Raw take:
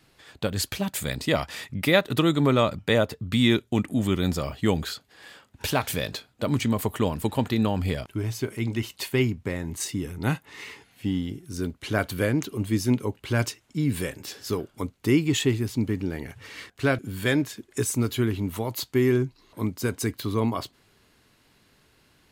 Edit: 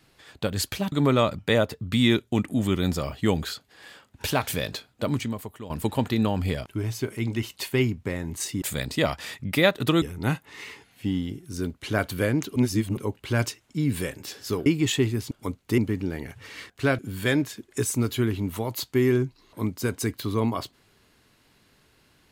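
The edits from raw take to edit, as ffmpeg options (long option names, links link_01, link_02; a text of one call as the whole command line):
ffmpeg -i in.wav -filter_complex "[0:a]asplit=10[link_01][link_02][link_03][link_04][link_05][link_06][link_07][link_08][link_09][link_10];[link_01]atrim=end=0.922[link_11];[link_02]atrim=start=2.318:end=7.1,asetpts=PTS-STARTPTS,afade=type=out:start_time=4.142:duration=0.64:curve=qua:silence=0.16788[link_12];[link_03]atrim=start=7.1:end=10.022,asetpts=PTS-STARTPTS,afade=type=in:duration=0.004:curve=hsin:silence=0.16788[link_13];[link_04]atrim=start=0.918:end=2.322[link_14];[link_05]atrim=start=10.018:end=12.562[link_15];[link_06]atrim=start=12.558:end=12.972,asetpts=PTS-STARTPTS,areverse[link_16];[link_07]atrim=start=12.968:end=14.662[link_17];[link_08]atrim=start=15.128:end=15.782[link_18];[link_09]atrim=start=14.658:end=15.132[link_19];[link_10]atrim=start=15.778[link_20];[link_12][link_13]concat=n=2:v=0:a=1[link_21];[link_11][link_21]acrossfade=duration=0.004:curve1=hsin:curve2=hsin[link_22];[link_22][link_14]acrossfade=duration=0.004:curve1=hsin:curve2=hsin[link_23];[link_23][link_15]acrossfade=duration=0.004:curve1=hsin:curve2=hsin[link_24];[link_24][link_16]acrossfade=duration=0.004:curve1=hsin:curve2=hsin[link_25];[link_25][link_17]acrossfade=duration=0.004:curve1=hsin:curve2=hsin[link_26];[link_26][link_18]acrossfade=duration=0.004:curve1=hsin:curve2=hsin[link_27];[link_27][link_19]acrossfade=duration=0.004:curve1=hsin:curve2=hsin[link_28];[link_28][link_20]acrossfade=duration=0.004:curve1=hsin:curve2=hsin" out.wav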